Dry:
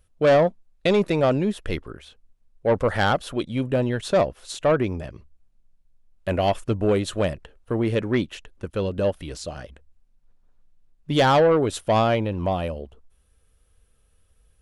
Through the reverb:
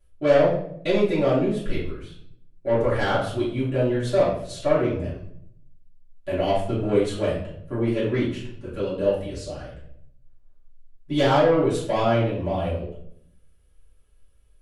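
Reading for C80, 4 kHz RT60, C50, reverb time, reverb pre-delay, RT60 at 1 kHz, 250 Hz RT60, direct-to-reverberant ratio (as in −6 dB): 7.5 dB, 0.50 s, 3.5 dB, 0.65 s, 3 ms, 0.55 s, 0.95 s, −10.5 dB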